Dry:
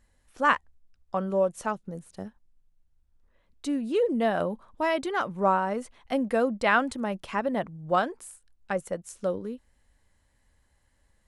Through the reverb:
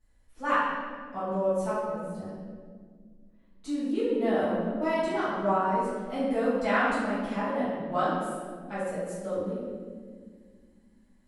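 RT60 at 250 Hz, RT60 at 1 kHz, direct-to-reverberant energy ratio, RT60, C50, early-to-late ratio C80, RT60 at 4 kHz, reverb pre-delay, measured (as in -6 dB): 3.2 s, 1.5 s, -14.5 dB, 1.8 s, -2.5 dB, 0.5 dB, 1.1 s, 5 ms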